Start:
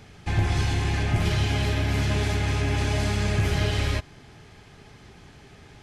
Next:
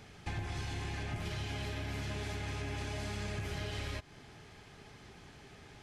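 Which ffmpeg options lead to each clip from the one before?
-af "lowshelf=f=210:g=-4,acompressor=threshold=-32dB:ratio=6,volume=-4dB"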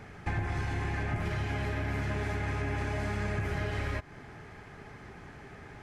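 -af "highshelf=f=2.5k:t=q:w=1.5:g=-8.5,volume=6.5dB"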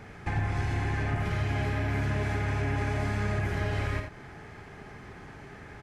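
-af "aecho=1:1:50|87:0.398|0.422,volume=1dB"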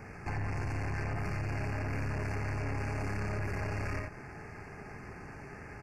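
-af "aeval=exprs='(tanh(50.1*val(0)+0.45)-tanh(0.45))/50.1':c=same,asuperstop=centerf=3500:order=20:qfactor=2.3,volume=1.5dB"

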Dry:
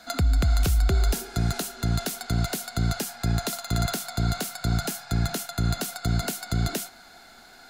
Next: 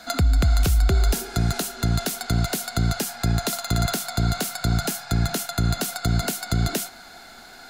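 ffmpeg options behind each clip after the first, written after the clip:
-af "alimiter=limit=-17.5dB:level=0:latency=1:release=274,volume=5.5dB"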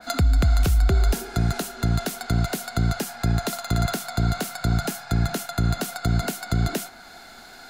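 -af "adynamicequalizer=threshold=0.00562:dfrequency=2700:dqfactor=0.7:tfrequency=2700:tqfactor=0.7:attack=5:release=100:ratio=0.375:range=2.5:mode=cutabove:tftype=highshelf"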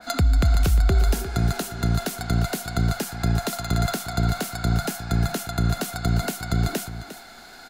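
-af "aecho=1:1:353:0.224"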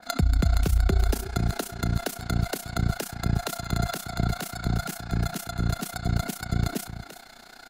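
-af "tremolo=f=30:d=0.857"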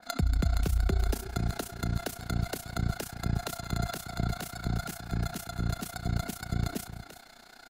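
-af "aecho=1:1:169:0.106,volume=-5dB"

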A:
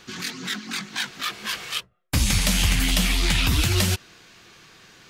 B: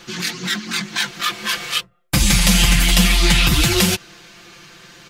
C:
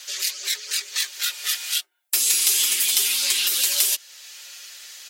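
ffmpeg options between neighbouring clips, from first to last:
-af "aecho=1:1:5.8:0.76,volume=5dB"
-af "aderivative,afreqshift=210,acompressor=threshold=-41dB:ratio=1.5,volume=9dB"

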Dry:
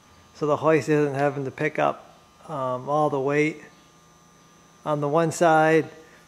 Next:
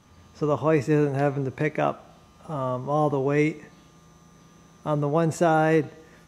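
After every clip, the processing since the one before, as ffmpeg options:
-af "lowshelf=f=300:g=9.5,dynaudnorm=f=130:g=3:m=3dB,volume=-6dB"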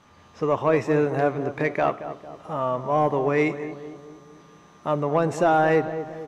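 -filter_complex "[0:a]asplit=2[a][b];[b]highpass=f=720:p=1,volume=11dB,asoftclip=type=tanh:threshold=-8.5dB[c];[a][c]amix=inputs=2:normalize=0,lowpass=f=2.2k:p=1,volume=-6dB,asplit=2[d][e];[e]adelay=226,lowpass=f=1.1k:p=1,volume=-10.5dB,asplit=2[f][g];[g]adelay=226,lowpass=f=1.1k:p=1,volume=0.54,asplit=2[h][i];[i]adelay=226,lowpass=f=1.1k:p=1,volume=0.54,asplit=2[j][k];[k]adelay=226,lowpass=f=1.1k:p=1,volume=0.54,asplit=2[l][m];[m]adelay=226,lowpass=f=1.1k:p=1,volume=0.54,asplit=2[n][o];[o]adelay=226,lowpass=f=1.1k:p=1,volume=0.54[p];[f][h][j][l][n][p]amix=inputs=6:normalize=0[q];[d][q]amix=inputs=2:normalize=0"

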